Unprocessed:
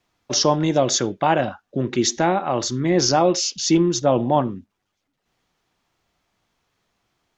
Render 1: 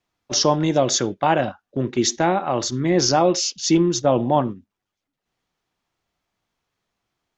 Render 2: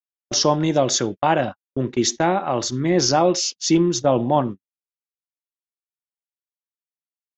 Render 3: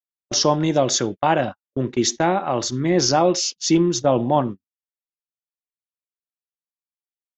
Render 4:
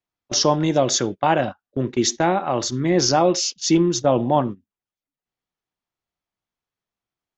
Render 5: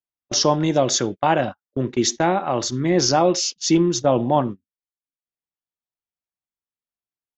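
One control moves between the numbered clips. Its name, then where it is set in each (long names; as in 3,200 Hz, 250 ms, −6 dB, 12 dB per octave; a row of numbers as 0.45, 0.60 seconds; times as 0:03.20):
noise gate, range: −7, −59, −45, −19, −32 decibels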